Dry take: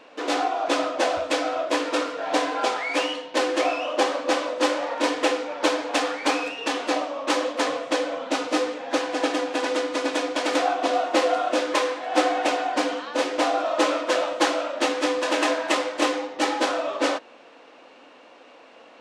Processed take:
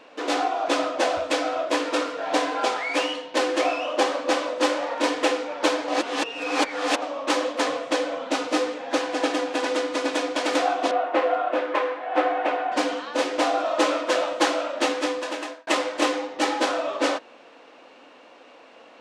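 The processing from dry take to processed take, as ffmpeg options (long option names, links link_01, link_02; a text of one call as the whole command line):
ffmpeg -i in.wav -filter_complex "[0:a]asettb=1/sr,asplit=3[link_01][link_02][link_03];[link_01]atrim=end=10.914[link_04];[link_02]atrim=start=10.91:end=12.72,asetpts=PTS-STARTPTS,afade=type=in:duration=0.004:curve=qsin,afade=type=out:start_time=1.806:duration=0.004:curve=qsin,acrossover=split=290 2800:gain=0.224 1 0.0708[link_05][link_06][link_07];[link_05][link_06][link_07]amix=inputs=3:normalize=0[link_08];[link_03]atrim=start=12.716[link_09];[link_04][link_08]acrossfade=duration=0.004:curve1=hsin:curve2=qsin[link_10];[link_10][link_09]acrossfade=duration=0.004:curve1=qsin:curve2=hsin,asplit=4[link_11][link_12][link_13][link_14];[link_11]atrim=end=5.882[link_15];[link_12]atrim=start=5.878:end=7.022,asetpts=PTS-STARTPTS,areverse[link_16];[link_13]atrim=start=7.018:end=15.67,asetpts=PTS-STARTPTS,afade=type=out:start_time=7.882:duration=0.77[link_17];[link_14]atrim=start=15.67,asetpts=PTS-STARTPTS,afade=type=in:duration=0.004:curve=hsin[link_18];[link_15][link_16]acrossfade=duration=0.004:curve1=hsin:curve2=hsin[link_19];[link_17][link_18]concat=n=2:v=0:a=1[link_20];[link_19][link_20]acrossfade=duration=0.004:curve1=hsin:curve2=hsin" out.wav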